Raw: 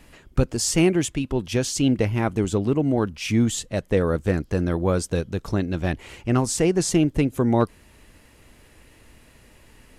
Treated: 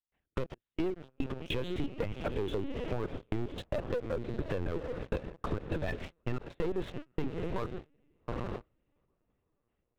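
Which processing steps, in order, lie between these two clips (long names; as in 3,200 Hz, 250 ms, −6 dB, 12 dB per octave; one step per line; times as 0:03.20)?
one-sided soft clipper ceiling −20.5 dBFS
gate pattern ".xxx..x..x.xxx.x" 113 BPM −24 dB
high-pass filter 160 Hz 12 dB per octave
parametric band 210 Hz −8 dB 0.38 octaves
feedback delay with all-pass diffusion 811 ms, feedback 46%, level −11.5 dB
linear-prediction vocoder at 8 kHz pitch kept
noise gate with hold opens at −28 dBFS
leveller curve on the samples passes 3
downward compressor, threshold −28 dBFS, peak gain reduction 13 dB
low-shelf EQ 430 Hz +4.5 dB
level −5.5 dB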